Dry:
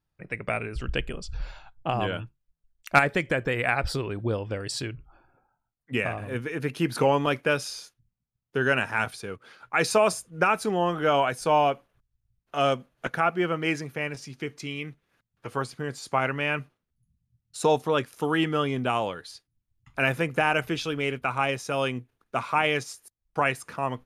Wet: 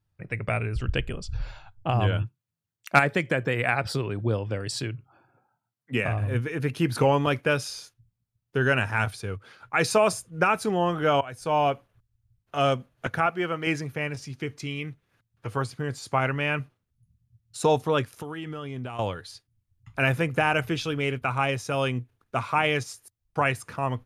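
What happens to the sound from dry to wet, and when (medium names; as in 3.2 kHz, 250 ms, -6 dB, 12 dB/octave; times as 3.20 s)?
2.22–6.08 s: high-pass 130 Hz 24 dB/octave
11.21–11.70 s: fade in, from -18.5 dB
13.26–13.67 s: bass shelf 320 Hz -7.5 dB
18.13–18.99 s: compression 5:1, threshold -34 dBFS
whole clip: peaking EQ 100 Hz +13 dB 0.72 oct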